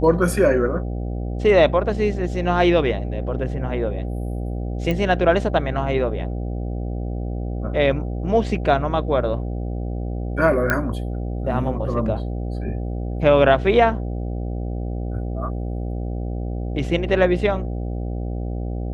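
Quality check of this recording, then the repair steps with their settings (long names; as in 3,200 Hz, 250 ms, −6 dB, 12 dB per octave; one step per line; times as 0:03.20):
mains buzz 60 Hz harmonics 13 −26 dBFS
0:04.91: click −12 dBFS
0:10.70: click −6 dBFS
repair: click removal
hum removal 60 Hz, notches 13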